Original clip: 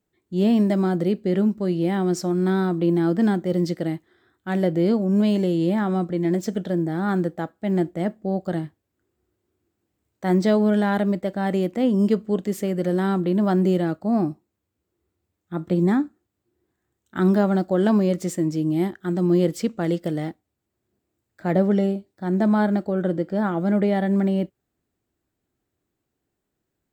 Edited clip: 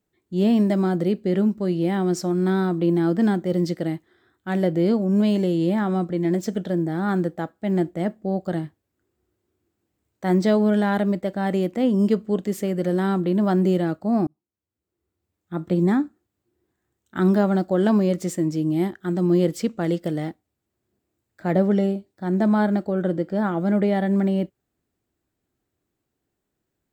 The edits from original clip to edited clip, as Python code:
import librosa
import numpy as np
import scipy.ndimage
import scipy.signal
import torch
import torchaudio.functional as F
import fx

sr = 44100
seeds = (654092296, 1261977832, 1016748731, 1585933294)

y = fx.edit(x, sr, fx.fade_in_span(start_s=14.27, length_s=1.27), tone=tone)